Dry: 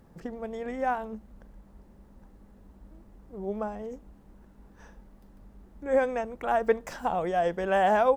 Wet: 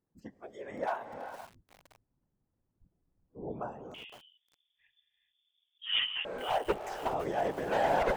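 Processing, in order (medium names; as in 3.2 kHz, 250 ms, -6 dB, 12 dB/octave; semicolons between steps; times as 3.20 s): one-sided wavefolder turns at -19.5 dBFS; spectral noise reduction 23 dB; whisper effect; gated-style reverb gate 440 ms rising, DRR 8.5 dB; 3.94–6.25 s: frequency inversion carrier 3.5 kHz; bit-crushed delay 514 ms, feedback 35%, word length 6-bit, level -13 dB; trim -5.5 dB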